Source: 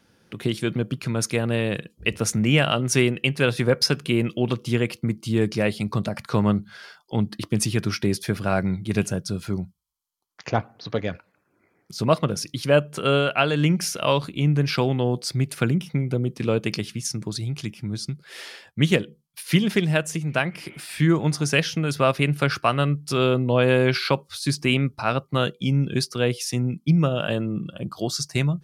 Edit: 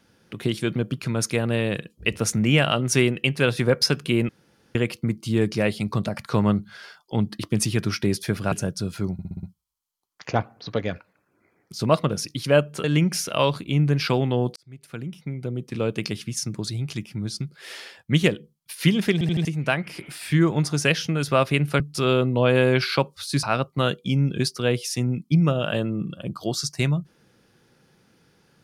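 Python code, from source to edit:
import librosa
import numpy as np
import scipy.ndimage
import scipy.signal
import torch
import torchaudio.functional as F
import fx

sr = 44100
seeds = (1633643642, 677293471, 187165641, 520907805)

y = fx.edit(x, sr, fx.room_tone_fill(start_s=4.29, length_s=0.46),
    fx.cut(start_s=8.52, length_s=0.49),
    fx.stutter(start_s=9.62, slice_s=0.06, count=6),
    fx.cut(start_s=13.03, length_s=0.49),
    fx.fade_in_span(start_s=15.24, length_s=1.77),
    fx.stutter_over(start_s=19.81, slice_s=0.08, count=4),
    fx.cut(start_s=22.48, length_s=0.45),
    fx.cut(start_s=24.56, length_s=0.43), tone=tone)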